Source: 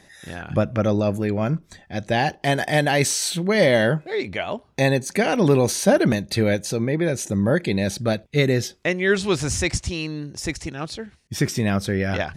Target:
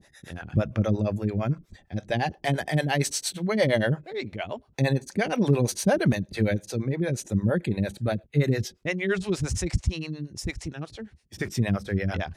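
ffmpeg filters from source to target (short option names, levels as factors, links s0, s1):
-filter_complex "[0:a]asettb=1/sr,asplit=3[s0][s1][s2];[s0]atrim=end=7.474[s3];[s1]atrim=start=7.47:end=8.44,asetpts=PTS-STARTPTS,afade=t=in:d=0.004:c=qsin,afade=t=out:st=0.966:d=0.004:c=qsin,equalizer=f=5300:t=o:w=0.53:g=-12.5[s4];[s2]atrim=start=8.436[s5];[s3][s4]acrossfade=d=0.004:c1=hsin:c2=qsin[s6];[s6][s5]acrossfade=d=0.004:c1=qsin:c2=hsin,acrossover=split=400[s7][s8];[s7]aeval=exprs='val(0)*(1-1/2+1/2*cos(2*PI*8.7*n/s))':c=same[s9];[s8]aeval=exprs='val(0)*(1-1/2-1/2*cos(2*PI*8.7*n/s))':c=same[s10];[s9][s10]amix=inputs=2:normalize=0,lowshelf=f=170:g=8,volume=0.75"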